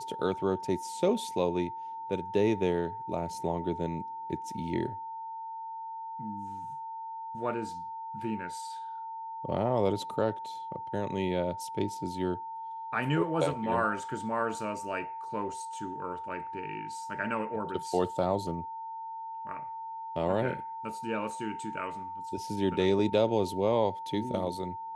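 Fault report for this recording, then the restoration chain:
whistle 900 Hz −37 dBFS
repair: notch filter 900 Hz, Q 30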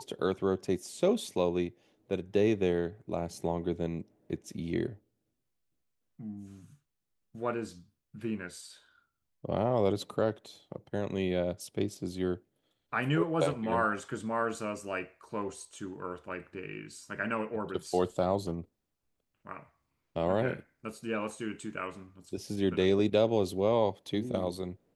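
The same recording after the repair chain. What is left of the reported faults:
none of them is left

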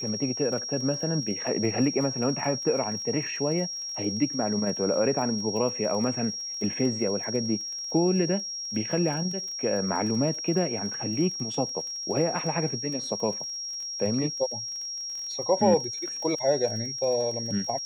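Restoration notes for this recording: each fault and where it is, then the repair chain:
surface crackle 28 per second −35 dBFS
whistle 5,600 Hz −32 dBFS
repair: click removal
notch filter 5,600 Hz, Q 30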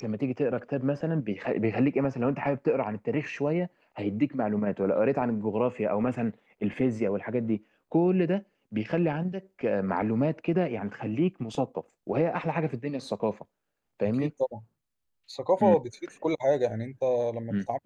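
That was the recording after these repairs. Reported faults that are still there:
none of them is left

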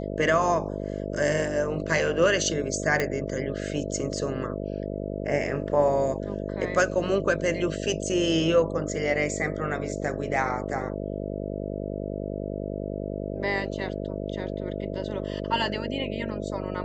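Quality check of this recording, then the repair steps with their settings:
mains buzz 50 Hz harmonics 13 −32 dBFS
0:03.00: click −12 dBFS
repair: click removal
hum removal 50 Hz, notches 13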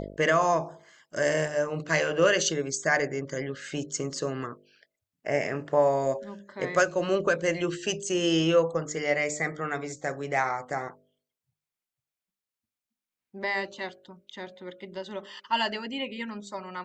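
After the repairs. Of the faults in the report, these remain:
none of them is left

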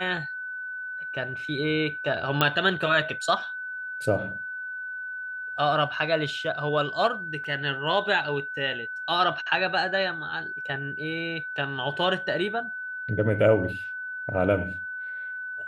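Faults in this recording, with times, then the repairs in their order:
whistle 1,500 Hz −32 dBFS
0:02.41: click −7 dBFS
0:07.44–0:07.45: drop-out 5.1 ms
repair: click removal
notch filter 1,500 Hz, Q 30
repair the gap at 0:07.44, 5.1 ms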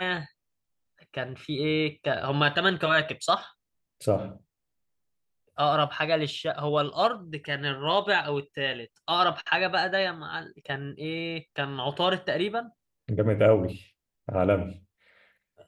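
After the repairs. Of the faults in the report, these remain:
none of them is left

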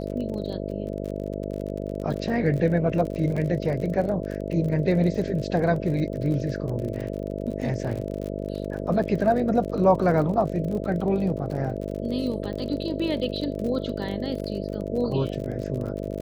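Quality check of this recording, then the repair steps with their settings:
mains buzz 50 Hz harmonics 13 −31 dBFS
surface crackle 42 per second −32 dBFS
0:03.36–0:03.37: drop-out 5.5 ms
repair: click removal
hum removal 50 Hz, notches 13
repair the gap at 0:03.36, 5.5 ms

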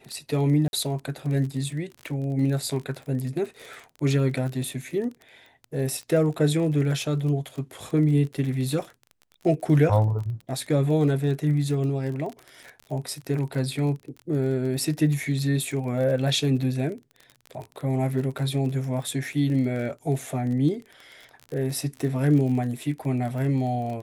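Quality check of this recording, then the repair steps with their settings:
surface crackle 31 per second −32 dBFS
0:00.68–0:00.73: drop-out 51 ms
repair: click removal
repair the gap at 0:00.68, 51 ms

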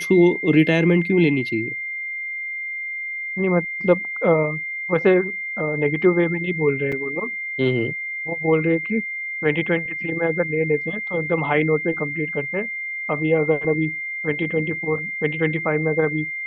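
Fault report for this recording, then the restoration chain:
whistle 2,100 Hz −26 dBFS
0:06.92: drop-out 4.8 ms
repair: notch filter 2,100 Hz, Q 30
repair the gap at 0:06.92, 4.8 ms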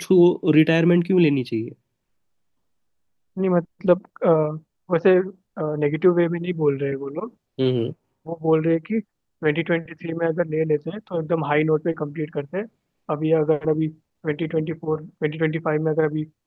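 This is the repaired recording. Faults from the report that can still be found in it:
none of them is left

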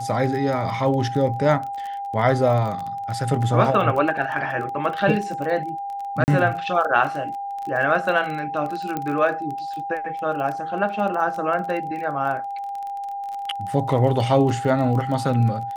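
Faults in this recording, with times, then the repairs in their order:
surface crackle 23 per second −28 dBFS
whistle 800 Hz −27 dBFS
0:06.24–0:06.28: drop-out 39 ms
0:08.97: click −13 dBFS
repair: click removal
notch filter 800 Hz, Q 30
repair the gap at 0:06.24, 39 ms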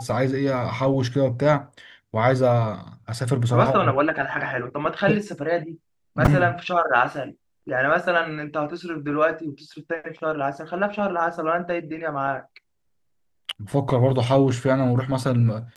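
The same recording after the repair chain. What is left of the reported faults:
none of them is left

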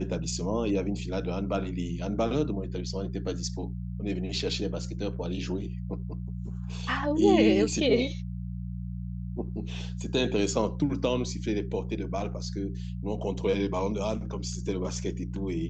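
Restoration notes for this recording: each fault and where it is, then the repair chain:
mains hum 60 Hz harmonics 3 −35 dBFS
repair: hum removal 60 Hz, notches 3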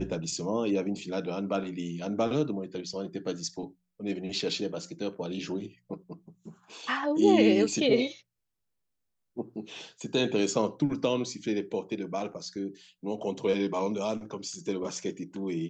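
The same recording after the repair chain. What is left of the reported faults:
none of them is left

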